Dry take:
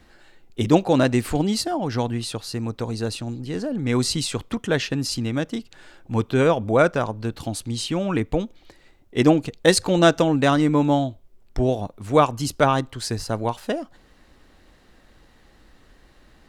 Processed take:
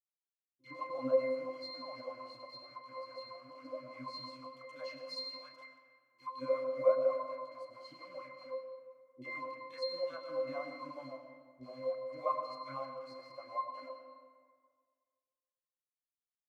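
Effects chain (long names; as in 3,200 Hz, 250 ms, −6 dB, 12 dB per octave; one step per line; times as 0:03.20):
mu-law and A-law mismatch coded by mu
0:04.39–0:06.40: RIAA equalisation recording
noise gate −34 dBFS, range −7 dB
parametric band 400 Hz −4 dB 0.26 octaves
bit reduction 5 bits
resonances in every octave C, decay 0.59 s
auto-filter high-pass sine 5.4 Hz 570–1,800 Hz
double-tracking delay 36 ms −13.5 dB
three-band delay without the direct sound lows, highs, mids 50/80 ms, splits 360/2,400 Hz
convolution reverb RT60 1.7 s, pre-delay 60 ms, DRR 6.5 dB
level +3.5 dB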